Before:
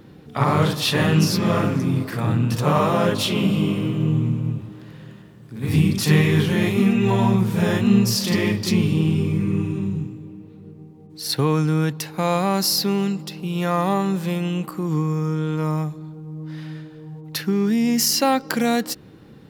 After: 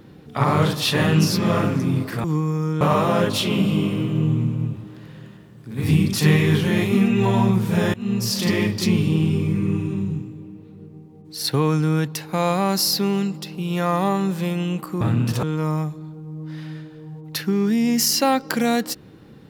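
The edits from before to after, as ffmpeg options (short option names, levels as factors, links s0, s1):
-filter_complex "[0:a]asplit=6[s0][s1][s2][s3][s4][s5];[s0]atrim=end=2.242[s6];[s1]atrim=start=14.858:end=15.432[s7];[s2]atrim=start=2.658:end=7.79,asetpts=PTS-STARTPTS,afade=t=out:st=5.128:d=0.004:c=hsin:silence=0.0749894[s8];[s3]atrim=start=7.79:end=14.862,asetpts=PTS-STARTPTS,afade=t=in:d=0.45:silence=0.0749894[s9];[s4]atrim=start=2.238:end=2.662[s10];[s5]atrim=start=15.428[s11];[s6][s7]acrossfade=d=0.004:c1=hsin:c2=hsin[s12];[s8][s9]concat=n=2:v=0:a=1[s13];[s12][s13]acrossfade=d=0.004:c1=hsin:c2=hsin[s14];[s14][s10]acrossfade=d=0.004:c1=hsin:c2=hsin[s15];[s15][s11]acrossfade=d=0.004:c1=hsin:c2=hsin"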